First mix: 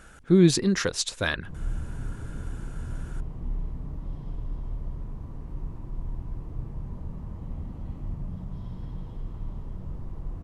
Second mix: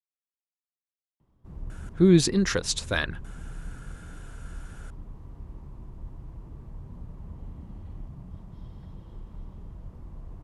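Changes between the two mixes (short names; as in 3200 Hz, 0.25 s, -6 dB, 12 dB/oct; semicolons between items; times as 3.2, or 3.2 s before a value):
speech: entry +1.70 s; reverb: off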